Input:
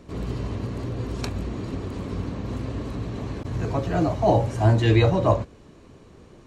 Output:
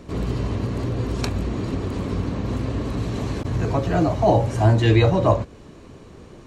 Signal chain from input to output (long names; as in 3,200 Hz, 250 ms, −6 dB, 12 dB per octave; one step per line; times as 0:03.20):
in parallel at −1 dB: downward compressor, threshold −26 dBFS, peak gain reduction 13 dB
0:02.97–0:03.42: on the sum: high-shelf EQ 4,600 Hz +7.5 dB